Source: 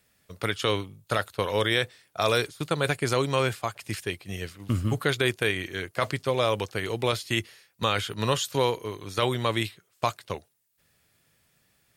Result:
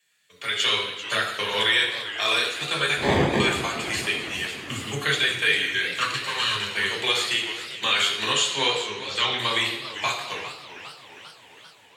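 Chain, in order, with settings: 5.97–6.74 minimum comb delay 0.73 ms; differentiator; flange 0.19 Hz, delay 6.1 ms, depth 6.7 ms, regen +41%; low shelf 400 Hz +5 dB; 2.96–3.4 sample-rate reducer 1400 Hz, jitter 0%; limiter -30.5 dBFS, peak gain reduction 9 dB; reverb RT60 0.90 s, pre-delay 3 ms, DRR -4.5 dB; AGC gain up to 8 dB; 8.33–9.38 LPF 11000 Hz -> 4800 Hz 24 dB/oct; warbling echo 0.399 s, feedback 63%, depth 191 cents, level -13 dB

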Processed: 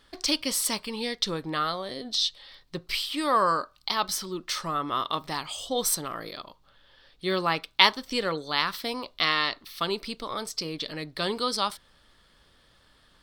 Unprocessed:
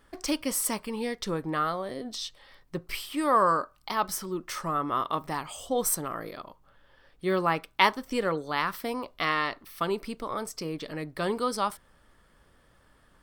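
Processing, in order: bell 4000 Hz +14.5 dB 1.1 oct; gain -1.5 dB

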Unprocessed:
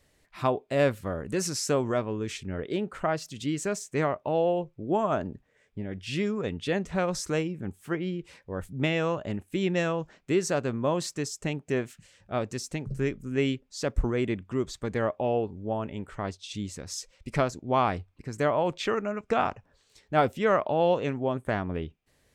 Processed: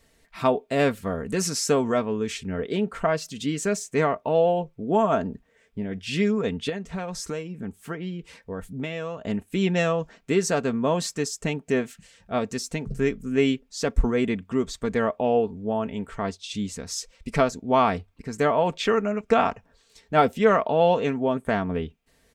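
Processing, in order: comb 4.4 ms, depth 51%; 6.69–9.25 compressor 4:1, threshold -33 dBFS, peak gain reduction 10.5 dB; gain +3.5 dB

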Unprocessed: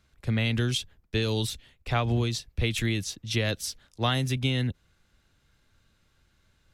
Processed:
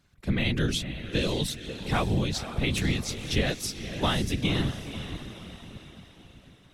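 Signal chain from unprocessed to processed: diffused feedback echo 0.52 s, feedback 48%, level -10 dB; whisperiser

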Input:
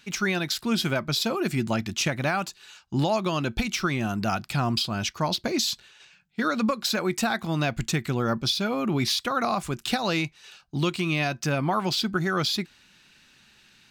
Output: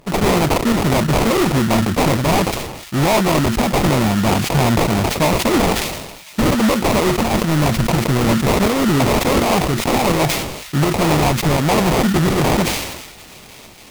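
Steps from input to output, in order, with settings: dynamic EQ 2100 Hz, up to +8 dB, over -46 dBFS, Q 2.5; sample-rate reducer 1600 Hz, jitter 20%; in parallel at -6 dB: sine folder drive 10 dB, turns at -12 dBFS; on the sum: pump 83 bpm, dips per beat 1, -9 dB, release 0.198 s; on a send: thin delay 1.045 s, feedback 72%, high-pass 2400 Hz, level -16.5 dB; on the sum: sustainer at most 48 dB/s; gain +2.5 dB

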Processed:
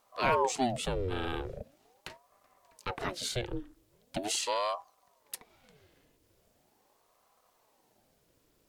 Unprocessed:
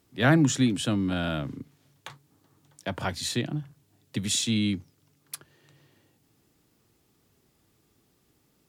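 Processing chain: in parallel at +1 dB: compressor, threshold -33 dBFS, peak gain reduction 16 dB; on the sum: ring modulator with a swept carrier 530 Hz, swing 70%, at 0.41 Hz; gain -6 dB

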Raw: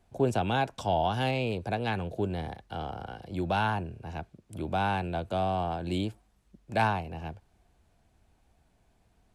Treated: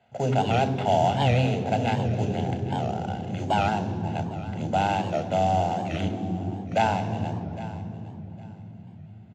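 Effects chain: HPF 110 Hz; bell 1400 Hz -11 dB 1.3 oct; in parallel at -2 dB: compressor, threshold -38 dBFS, peak gain reduction 16 dB; on the sum: sample-rate reducer 6500 Hz, jitter 20%; air absorption 67 m; feedback echo 0.809 s, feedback 22%, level -17 dB; reverb RT60 3.5 s, pre-delay 3 ms, DRR 9 dB; record warp 78 rpm, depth 160 cents; gain -2 dB

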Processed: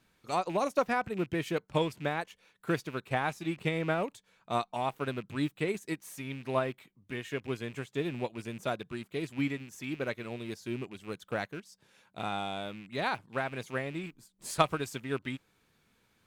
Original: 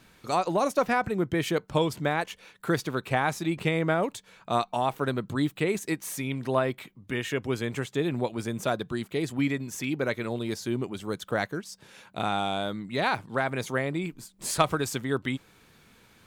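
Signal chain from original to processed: rattling part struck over -37 dBFS, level -30 dBFS; upward expander 1.5:1, over -39 dBFS; gain -2 dB

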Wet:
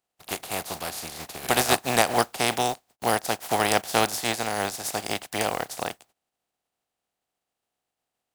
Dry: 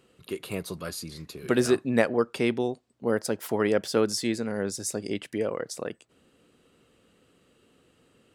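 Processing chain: spectral contrast lowered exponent 0.32; bell 740 Hz +12 dB 0.54 oct; gate -53 dBFS, range -26 dB; in parallel at -3 dB: compressor, threshold -34 dBFS, peak gain reduction 19.5 dB; on the sum: gain -2 dB

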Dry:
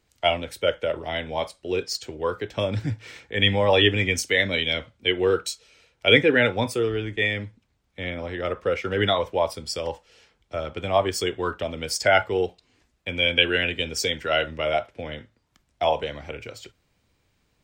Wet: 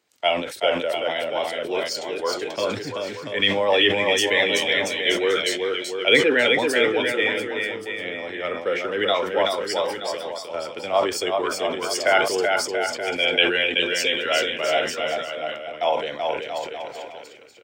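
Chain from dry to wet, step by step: HPF 300 Hz 12 dB/oct; bouncing-ball echo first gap 0.38 s, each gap 0.8×, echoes 5; sustainer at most 75 dB/s

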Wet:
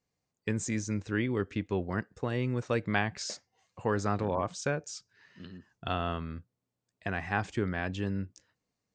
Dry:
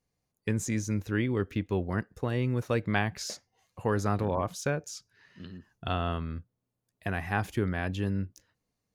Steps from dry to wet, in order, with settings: Chebyshev low-pass 8500 Hz, order 8; low shelf 66 Hz -10 dB

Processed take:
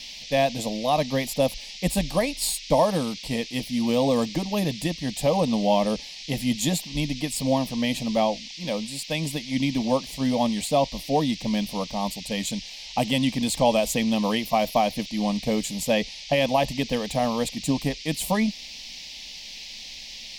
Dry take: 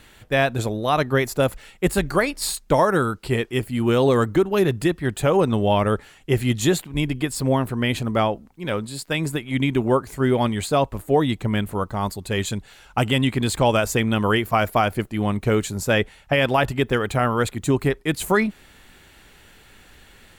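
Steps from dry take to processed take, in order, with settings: band noise 2000–5600 Hz -38 dBFS; fixed phaser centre 380 Hz, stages 6

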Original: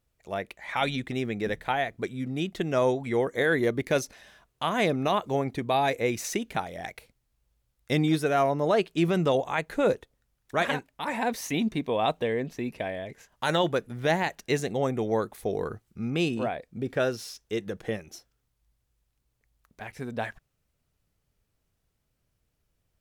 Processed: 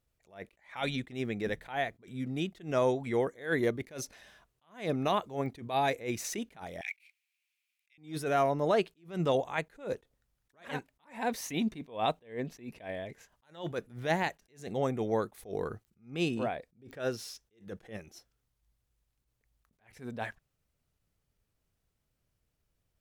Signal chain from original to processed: 6.81–7.98 resonant high-pass 2400 Hz, resonance Q 6.9; pops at 5.46/15.85/16.91, -33 dBFS; attack slew limiter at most 170 dB/s; gain -3.5 dB

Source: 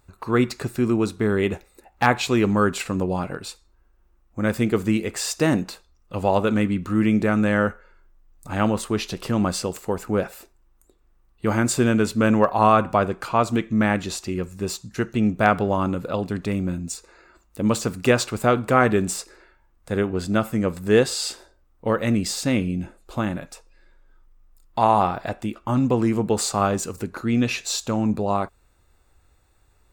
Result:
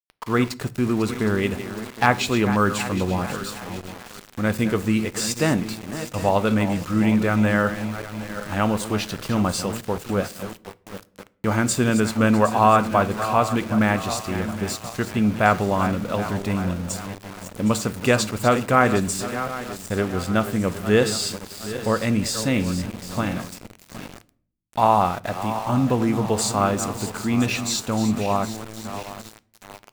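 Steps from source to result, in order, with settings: regenerating reverse delay 0.382 s, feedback 66%, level -11 dB; bell 360 Hz -4.5 dB 0.78 oct; sample gate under -34 dBFS; on a send: reverb RT60 0.50 s, pre-delay 3 ms, DRR 16.5 dB; on the sum: gain +1 dB

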